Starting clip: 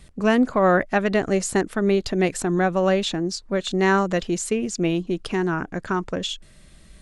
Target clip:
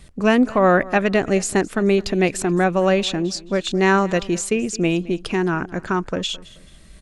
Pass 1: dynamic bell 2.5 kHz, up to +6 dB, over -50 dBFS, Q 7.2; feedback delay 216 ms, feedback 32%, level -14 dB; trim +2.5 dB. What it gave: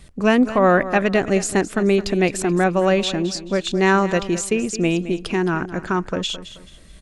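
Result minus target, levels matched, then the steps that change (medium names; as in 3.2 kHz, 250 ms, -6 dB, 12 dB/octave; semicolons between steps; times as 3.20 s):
echo-to-direct +6.5 dB
change: feedback delay 216 ms, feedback 32%, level -20.5 dB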